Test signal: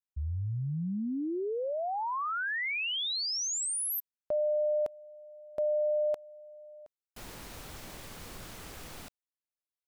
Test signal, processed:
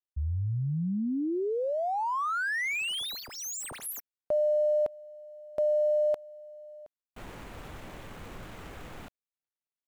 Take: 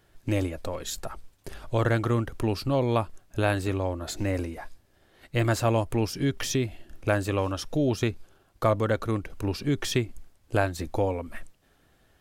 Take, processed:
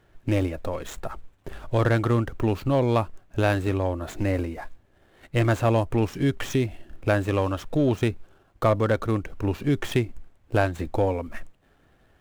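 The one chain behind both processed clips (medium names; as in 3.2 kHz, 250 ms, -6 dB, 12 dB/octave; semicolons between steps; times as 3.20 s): median filter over 9 samples; in parallel at -7 dB: hard clipper -20 dBFS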